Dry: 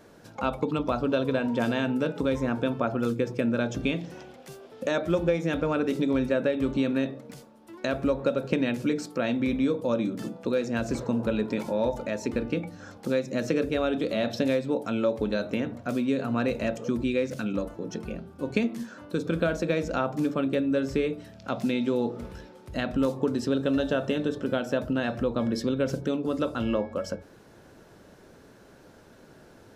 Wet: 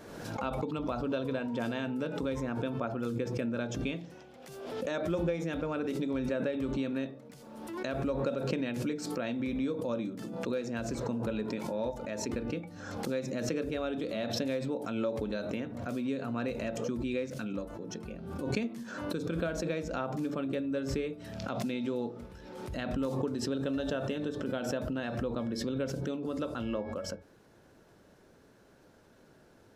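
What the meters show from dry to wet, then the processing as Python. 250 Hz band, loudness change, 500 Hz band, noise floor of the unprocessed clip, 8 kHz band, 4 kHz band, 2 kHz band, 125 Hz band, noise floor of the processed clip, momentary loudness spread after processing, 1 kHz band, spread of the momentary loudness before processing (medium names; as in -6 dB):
-6.5 dB, -6.5 dB, -7.0 dB, -53 dBFS, -0.5 dB, -5.0 dB, -7.0 dB, -4.5 dB, -60 dBFS, 7 LU, -6.0 dB, 8 LU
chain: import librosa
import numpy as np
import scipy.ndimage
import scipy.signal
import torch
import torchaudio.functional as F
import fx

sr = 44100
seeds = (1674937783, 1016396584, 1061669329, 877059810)

y = fx.pre_swell(x, sr, db_per_s=40.0)
y = F.gain(torch.from_numpy(y), -8.0).numpy()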